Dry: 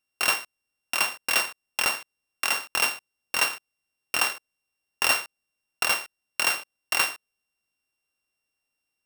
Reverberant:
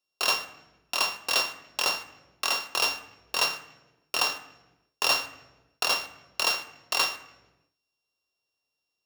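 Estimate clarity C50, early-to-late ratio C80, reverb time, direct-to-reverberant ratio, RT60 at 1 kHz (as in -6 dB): 13.5 dB, 15.0 dB, 1.1 s, 8.5 dB, 0.90 s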